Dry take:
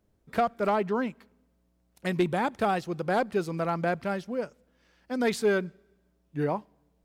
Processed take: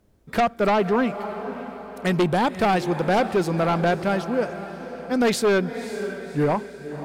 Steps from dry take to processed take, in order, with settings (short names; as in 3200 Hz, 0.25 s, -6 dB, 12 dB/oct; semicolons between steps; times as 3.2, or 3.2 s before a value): diffused feedback echo 0.55 s, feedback 47%, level -13 dB; sine folder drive 5 dB, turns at -15 dBFS